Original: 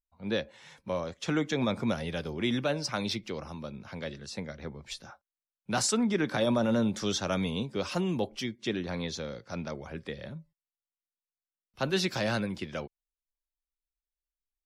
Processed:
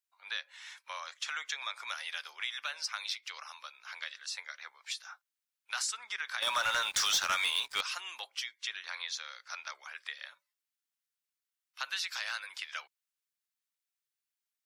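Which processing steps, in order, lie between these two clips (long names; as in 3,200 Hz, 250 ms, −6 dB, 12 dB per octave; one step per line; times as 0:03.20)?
high-pass filter 1,200 Hz 24 dB per octave
downward compressor 3 to 1, threshold −40 dBFS, peak gain reduction 11 dB
0:06.42–0:07.81: leveller curve on the samples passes 3
level +5 dB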